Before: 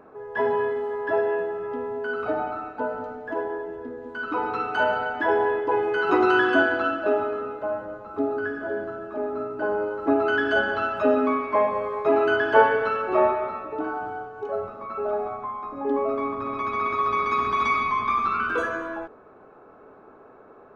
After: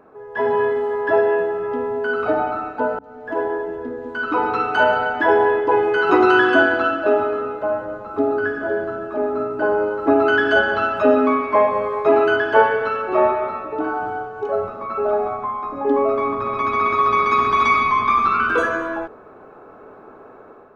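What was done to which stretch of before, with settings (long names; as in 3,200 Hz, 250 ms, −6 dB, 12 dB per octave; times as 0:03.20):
0:02.99–0:03.44: fade in
whole clip: hum removal 69.03 Hz, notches 4; automatic gain control gain up to 7 dB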